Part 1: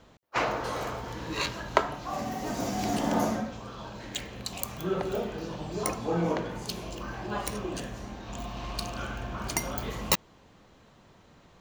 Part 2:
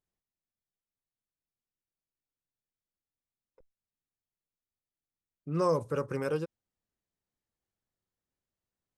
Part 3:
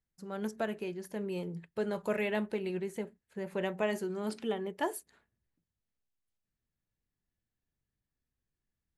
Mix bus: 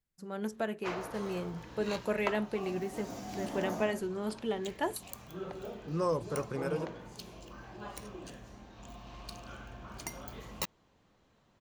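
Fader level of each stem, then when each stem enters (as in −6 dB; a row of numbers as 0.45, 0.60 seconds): −11.5, −3.5, 0.0 decibels; 0.50, 0.40, 0.00 seconds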